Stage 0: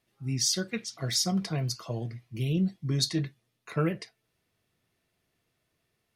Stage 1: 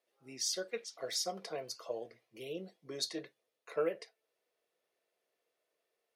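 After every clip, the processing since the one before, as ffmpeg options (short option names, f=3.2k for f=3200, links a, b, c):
-af "highpass=f=500:t=q:w=3.4,volume=-8.5dB"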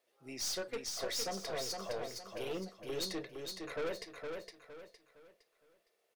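-af "aeval=exprs='(tanh(100*val(0)+0.35)-tanh(0.35))/100':c=same,aecho=1:1:462|924|1386|1848:0.562|0.191|0.065|0.0221,volume=5.5dB"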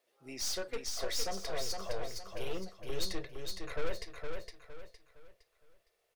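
-af "asubboost=boost=11.5:cutoff=74,volume=1dB"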